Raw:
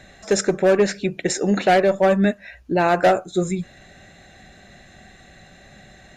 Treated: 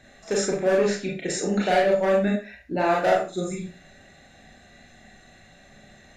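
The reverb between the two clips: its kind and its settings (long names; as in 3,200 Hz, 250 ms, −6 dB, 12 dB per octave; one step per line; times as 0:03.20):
four-comb reverb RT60 0.33 s, combs from 26 ms, DRR −3 dB
level −8.5 dB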